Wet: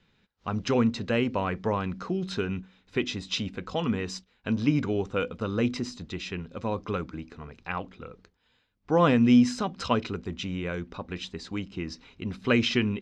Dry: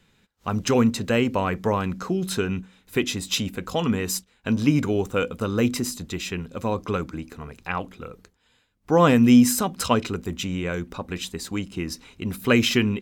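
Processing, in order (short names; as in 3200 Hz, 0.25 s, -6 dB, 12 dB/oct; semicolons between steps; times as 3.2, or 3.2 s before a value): LPF 5400 Hz 24 dB/oct; gain -4.5 dB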